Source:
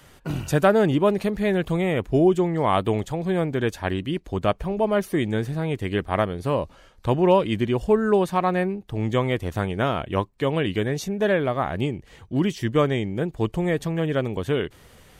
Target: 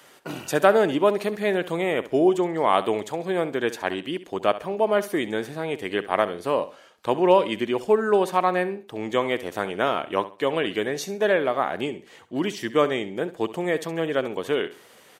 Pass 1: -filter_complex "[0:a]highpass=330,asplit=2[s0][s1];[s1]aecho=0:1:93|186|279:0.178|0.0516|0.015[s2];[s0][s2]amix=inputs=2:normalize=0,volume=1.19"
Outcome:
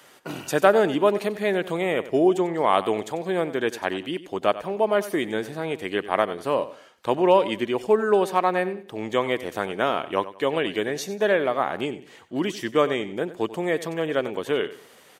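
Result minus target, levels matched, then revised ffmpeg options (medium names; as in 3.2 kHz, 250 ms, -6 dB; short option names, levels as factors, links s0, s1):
echo 26 ms late
-filter_complex "[0:a]highpass=330,asplit=2[s0][s1];[s1]aecho=0:1:67|134|201:0.178|0.0516|0.015[s2];[s0][s2]amix=inputs=2:normalize=0,volume=1.19"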